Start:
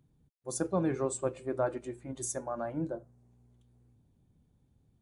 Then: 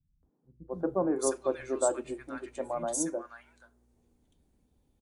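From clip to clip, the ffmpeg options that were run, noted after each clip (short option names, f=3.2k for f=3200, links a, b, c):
-filter_complex "[0:a]equalizer=f=120:w=1.5:g=-14.5,acrossover=split=160|1400[a][b][c];[b]adelay=230[d];[c]adelay=710[e];[a][d][e]amix=inputs=3:normalize=0,volume=4dB"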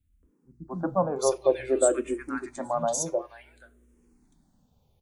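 -filter_complex "[0:a]asplit=2[a][b];[b]afreqshift=-0.55[c];[a][c]amix=inputs=2:normalize=1,volume=8.5dB"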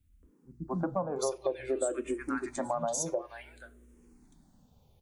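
-af "acompressor=threshold=-32dB:ratio=5,volume=3dB"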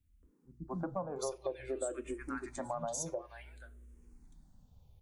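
-af "asubboost=boost=4:cutoff=130,volume=-5.5dB"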